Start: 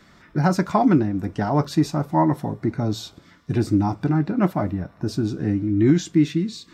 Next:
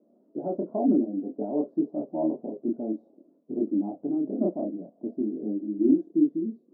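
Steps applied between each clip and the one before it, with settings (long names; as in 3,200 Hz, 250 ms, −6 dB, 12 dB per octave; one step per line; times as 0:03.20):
multi-voice chorus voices 2, 0.56 Hz, delay 27 ms, depth 4.1 ms
elliptic band-pass filter 230–630 Hz, stop band 60 dB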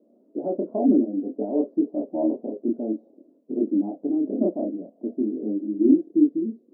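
graphic EQ with 10 bands 125 Hz −7 dB, 250 Hz +7 dB, 500 Hz +7 dB
level −3 dB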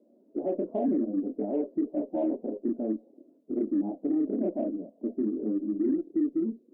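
spectral magnitudes quantised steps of 15 dB
brickwall limiter −18 dBFS, peak gain reduction 11 dB
harmonic generator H 6 −41 dB, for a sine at −18 dBFS
level −2 dB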